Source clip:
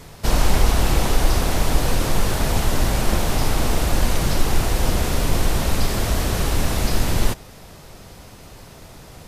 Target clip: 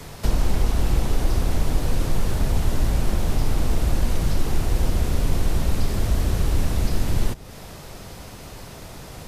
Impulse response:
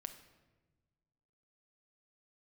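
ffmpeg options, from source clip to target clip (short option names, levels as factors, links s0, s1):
-filter_complex "[0:a]acrossover=split=120|460[s0][s1][s2];[s0]acompressor=threshold=0.126:ratio=4[s3];[s1]acompressor=threshold=0.02:ratio=4[s4];[s2]acompressor=threshold=0.0112:ratio=4[s5];[s3][s4][s5]amix=inputs=3:normalize=0,volume=1.41"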